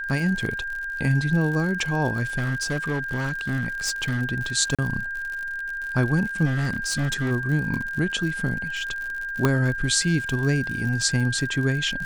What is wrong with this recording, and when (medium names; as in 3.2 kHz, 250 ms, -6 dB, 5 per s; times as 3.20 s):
crackle 69 per s -30 dBFS
whine 1.6 kHz -28 dBFS
2.37–4.22 s: clipped -21 dBFS
4.75–4.79 s: dropout 36 ms
6.45–7.32 s: clipped -21 dBFS
9.45 s: pop -7 dBFS